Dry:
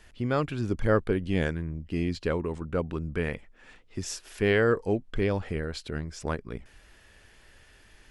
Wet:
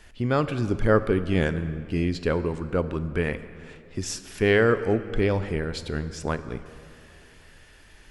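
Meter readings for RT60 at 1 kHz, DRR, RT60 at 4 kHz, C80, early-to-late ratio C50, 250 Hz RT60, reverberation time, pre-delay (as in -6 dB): 2.5 s, 11.5 dB, 1.7 s, 14.0 dB, 13.0 dB, 2.8 s, 2.5 s, 7 ms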